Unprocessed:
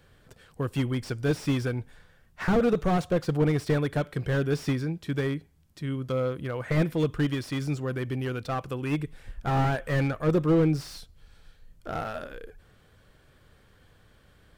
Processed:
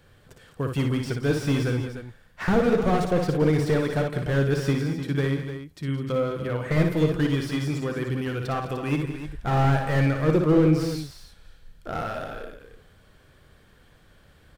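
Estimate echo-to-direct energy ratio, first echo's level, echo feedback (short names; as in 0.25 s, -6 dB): -3.0 dB, -5.5 dB, no steady repeat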